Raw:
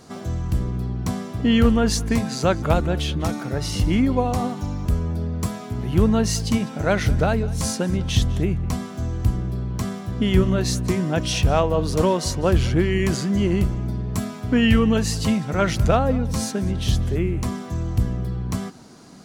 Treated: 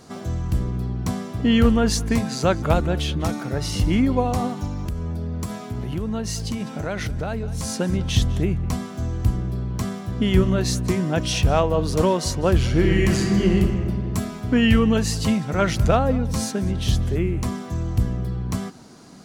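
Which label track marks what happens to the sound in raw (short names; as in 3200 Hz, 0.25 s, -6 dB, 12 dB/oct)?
4.670000	7.760000	compressor 5:1, threshold -23 dBFS
12.670000	13.550000	reverb throw, RT60 2.2 s, DRR 1 dB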